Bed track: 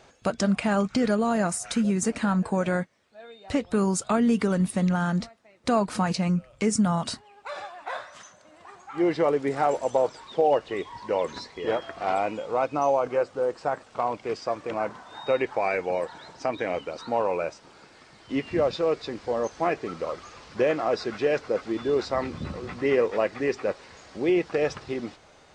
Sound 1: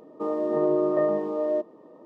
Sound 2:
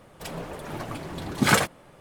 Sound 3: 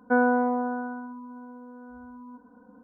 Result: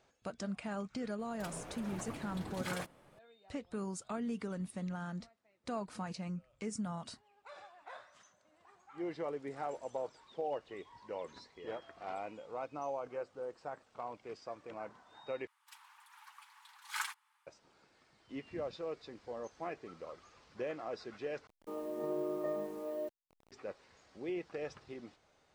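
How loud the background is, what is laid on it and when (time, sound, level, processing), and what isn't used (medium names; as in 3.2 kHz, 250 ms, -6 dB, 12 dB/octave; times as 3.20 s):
bed track -16.5 dB
1.19 s: add 2 -11 dB + compression 10:1, threshold -25 dBFS
15.47 s: replace with 2 -17 dB + steep high-pass 850 Hz 96 dB/octave
21.47 s: replace with 1 -14 dB + send-on-delta sampling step -40.5 dBFS
not used: 3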